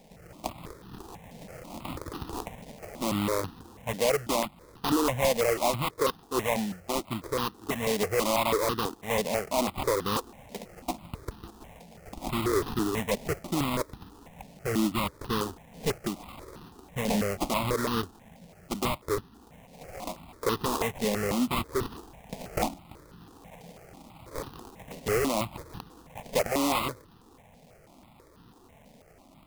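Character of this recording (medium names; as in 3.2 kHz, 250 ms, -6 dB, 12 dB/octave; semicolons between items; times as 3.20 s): aliases and images of a low sample rate 1.6 kHz, jitter 20%; notches that jump at a steady rate 6.1 Hz 340–2200 Hz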